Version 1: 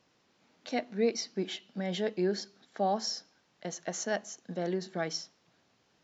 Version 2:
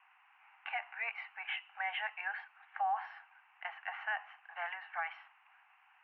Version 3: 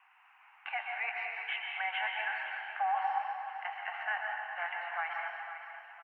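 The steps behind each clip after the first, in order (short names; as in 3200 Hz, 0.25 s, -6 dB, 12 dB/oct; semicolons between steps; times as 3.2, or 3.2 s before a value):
Chebyshev band-pass 770–2800 Hz, order 5; limiter -36.5 dBFS, peak gain reduction 11.5 dB; gain +9.5 dB
feedback echo 0.51 s, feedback 47%, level -11.5 dB; plate-style reverb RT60 1.9 s, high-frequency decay 0.65×, pre-delay 0.115 s, DRR 0.5 dB; gain +1.5 dB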